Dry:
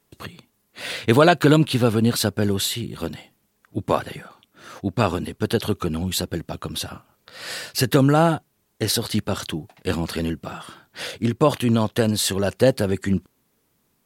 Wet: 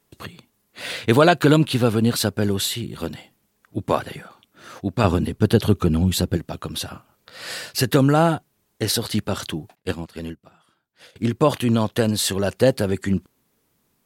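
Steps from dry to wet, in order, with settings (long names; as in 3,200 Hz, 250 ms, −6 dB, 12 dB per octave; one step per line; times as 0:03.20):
0:05.04–0:06.37: low-shelf EQ 330 Hz +9 dB
0:09.75–0:11.16: expander for the loud parts 2.5 to 1, over −34 dBFS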